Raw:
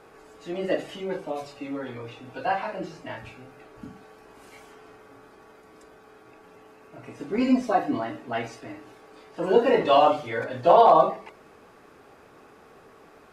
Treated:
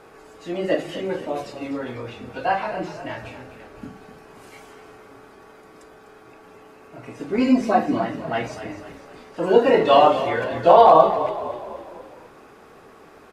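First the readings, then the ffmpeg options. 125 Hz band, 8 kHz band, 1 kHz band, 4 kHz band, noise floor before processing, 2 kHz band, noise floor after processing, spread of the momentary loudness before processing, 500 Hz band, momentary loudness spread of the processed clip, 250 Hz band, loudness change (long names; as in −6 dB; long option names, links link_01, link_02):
+5.0 dB, can't be measured, +4.5 dB, +4.5 dB, −53 dBFS, +4.5 dB, −48 dBFS, 21 LU, +4.5 dB, 21 LU, +4.5 dB, +4.0 dB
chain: -filter_complex "[0:a]asplit=6[link_01][link_02][link_03][link_04][link_05][link_06];[link_02]adelay=250,afreqshift=-32,volume=-12dB[link_07];[link_03]adelay=500,afreqshift=-64,volume=-17.8dB[link_08];[link_04]adelay=750,afreqshift=-96,volume=-23.7dB[link_09];[link_05]adelay=1000,afreqshift=-128,volume=-29.5dB[link_10];[link_06]adelay=1250,afreqshift=-160,volume=-35.4dB[link_11];[link_01][link_07][link_08][link_09][link_10][link_11]amix=inputs=6:normalize=0,volume=4dB"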